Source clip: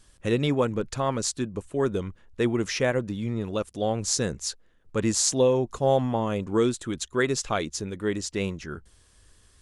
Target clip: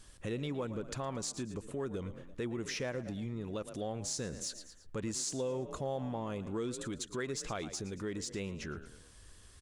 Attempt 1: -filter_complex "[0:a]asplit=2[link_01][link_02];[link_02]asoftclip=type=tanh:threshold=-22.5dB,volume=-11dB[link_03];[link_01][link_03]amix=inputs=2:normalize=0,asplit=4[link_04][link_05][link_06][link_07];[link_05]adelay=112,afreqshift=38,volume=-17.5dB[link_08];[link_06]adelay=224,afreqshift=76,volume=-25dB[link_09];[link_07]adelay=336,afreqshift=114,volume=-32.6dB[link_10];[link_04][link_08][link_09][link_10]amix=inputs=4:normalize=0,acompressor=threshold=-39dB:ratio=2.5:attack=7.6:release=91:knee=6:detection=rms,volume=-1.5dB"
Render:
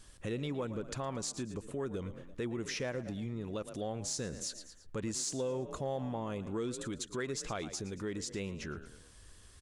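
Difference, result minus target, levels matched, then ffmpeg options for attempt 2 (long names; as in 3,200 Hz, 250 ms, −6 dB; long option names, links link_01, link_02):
soft clipping: distortion −6 dB
-filter_complex "[0:a]asplit=2[link_01][link_02];[link_02]asoftclip=type=tanh:threshold=-32.5dB,volume=-11dB[link_03];[link_01][link_03]amix=inputs=2:normalize=0,asplit=4[link_04][link_05][link_06][link_07];[link_05]adelay=112,afreqshift=38,volume=-17.5dB[link_08];[link_06]adelay=224,afreqshift=76,volume=-25dB[link_09];[link_07]adelay=336,afreqshift=114,volume=-32.6dB[link_10];[link_04][link_08][link_09][link_10]amix=inputs=4:normalize=0,acompressor=threshold=-39dB:ratio=2.5:attack=7.6:release=91:knee=6:detection=rms,volume=-1.5dB"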